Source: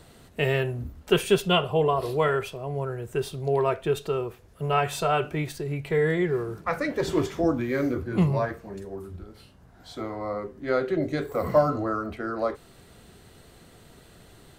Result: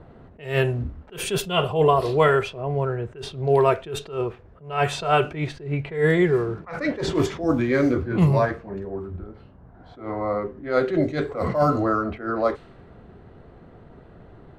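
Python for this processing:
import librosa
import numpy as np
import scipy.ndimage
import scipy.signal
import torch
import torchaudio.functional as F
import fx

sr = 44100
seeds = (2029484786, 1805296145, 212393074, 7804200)

y = fx.env_lowpass(x, sr, base_hz=1100.0, full_db=-19.0)
y = fx.attack_slew(y, sr, db_per_s=140.0)
y = F.gain(torch.from_numpy(y), 6.0).numpy()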